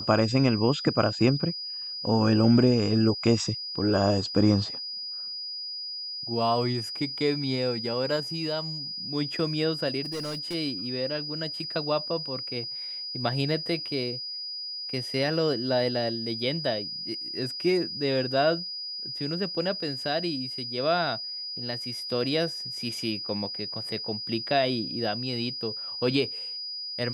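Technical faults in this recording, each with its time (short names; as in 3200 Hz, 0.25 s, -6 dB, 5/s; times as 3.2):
tone 4900 Hz -33 dBFS
10.02–10.55 clipped -29.5 dBFS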